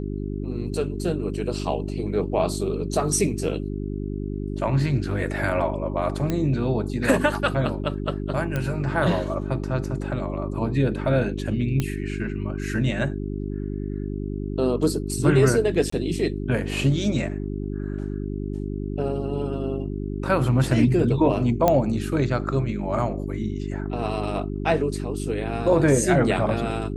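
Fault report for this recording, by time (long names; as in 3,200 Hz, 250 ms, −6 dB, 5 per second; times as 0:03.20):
mains hum 50 Hz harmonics 8 −29 dBFS
0:06.30: click −12 dBFS
0:08.56: click −13 dBFS
0:11.80: click −11 dBFS
0:15.90–0:15.92: drop-out 24 ms
0:21.68: click −6 dBFS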